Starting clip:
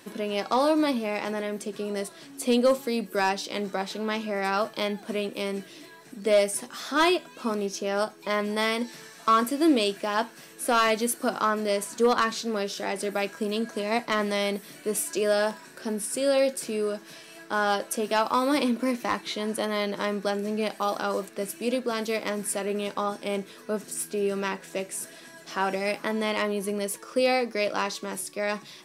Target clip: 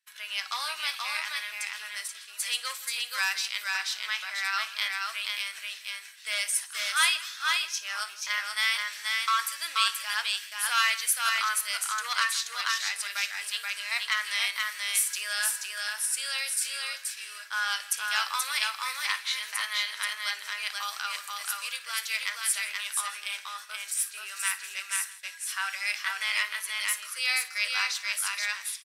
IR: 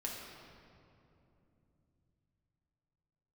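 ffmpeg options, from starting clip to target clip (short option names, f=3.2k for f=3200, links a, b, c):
-filter_complex "[0:a]asplit=2[a][b];[b]aecho=0:1:480:0.708[c];[a][c]amix=inputs=2:normalize=0,agate=range=-33dB:threshold=-34dB:ratio=3:detection=peak,highpass=f=1.5k:w=0.5412,highpass=f=1.5k:w=1.3066,asplit=2[d][e];[e]aecho=0:1:57|163:0.15|0.106[f];[d][f]amix=inputs=2:normalize=0,volume=3.5dB"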